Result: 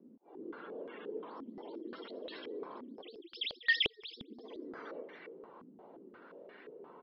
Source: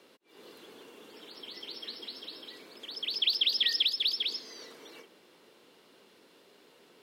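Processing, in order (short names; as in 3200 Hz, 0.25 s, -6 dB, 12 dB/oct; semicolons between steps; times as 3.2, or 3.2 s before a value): echo 0.278 s -8.5 dB; spectral gate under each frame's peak -20 dB strong; stepped low-pass 5.7 Hz 240–1900 Hz; gain +2.5 dB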